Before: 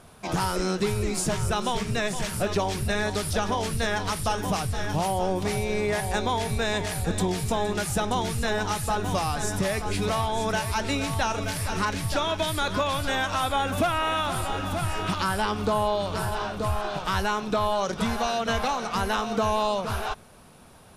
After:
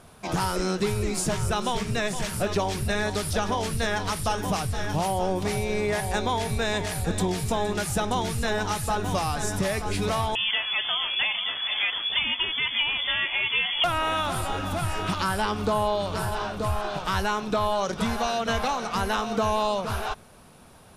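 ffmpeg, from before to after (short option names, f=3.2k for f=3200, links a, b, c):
-filter_complex "[0:a]asettb=1/sr,asplit=3[a][b][c];[a]atrim=end=10.354[d];[b]atrim=start=10.35:end=13.84,asetpts=PTS-STARTPTS,afade=t=in:d=0.004:c=qsin,afade=t=out:st=3.486:d=0.004:c=qsin,lowpass=f=3k:t=q:w=0.5098,lowpass=f=3k:t=q:w=0.6013,lowpass=f=3k:t=q:w=0.9,lowpass=f=3k:t=q:w=2.563,afreqshift=-3500[e];[c]atrim=start=13.836[f];[d][e]acrossfade=d=0.004:c1=hsin:c2=qsin[g];[g][f]acrossfade=d=0.004:c1=qsin:c2=hsin"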